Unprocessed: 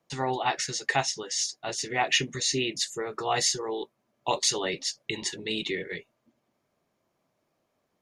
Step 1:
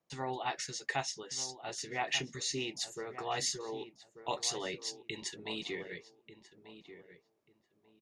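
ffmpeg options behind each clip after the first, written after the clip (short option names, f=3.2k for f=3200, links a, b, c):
-filter_complex "[0:a]asplit=2[a][b];[b]adelay=1189,lowpass=f=1.7k:p=1,volume=-11.5dB,asplit=2[c][d];[d]adelay=1189,lowpass=f=1.7k:p=1,volume=0.23,asplit=2[e][f];[f]adelay=1189,lowpass=f=1.7k:p=1,volume=0.23[g];[a][c][e][g]amix=inputs=4:normalize=0,volume=-9dB"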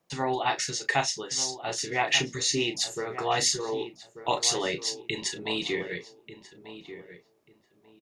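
-filter_complex "[0:a]asplit=2[a][b];[b]adelay=34,volume=-9.5dB[c];[a][c]amix=inputs=2:normalize=0,volume=9dB"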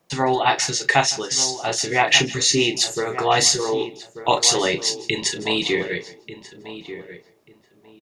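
-af "aecho=1:1:160:0.1,volume=8.5dB"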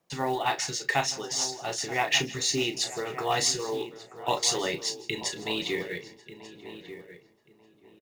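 -filter_complex "[0:a]acrusher=bits=6:mode=log:mix=0:aa=0.000001,asplit=2[a][b];[b]adelay=932.9,volume=-15dB,highshelf=f=4k:g=-21[c];[a][c]amix=inputs=2:normalize=0,volume=-9dB"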